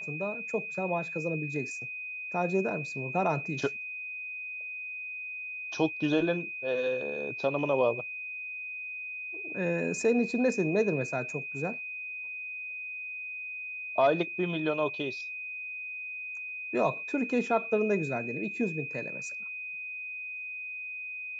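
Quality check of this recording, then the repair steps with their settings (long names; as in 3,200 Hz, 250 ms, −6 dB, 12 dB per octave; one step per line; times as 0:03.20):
whistle 2,500 Hz −36 dBFS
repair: notch filter 2,500 Hz, Q 30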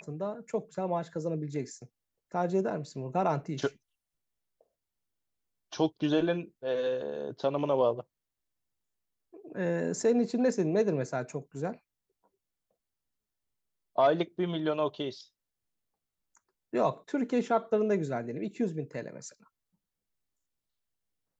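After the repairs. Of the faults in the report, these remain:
none of them is left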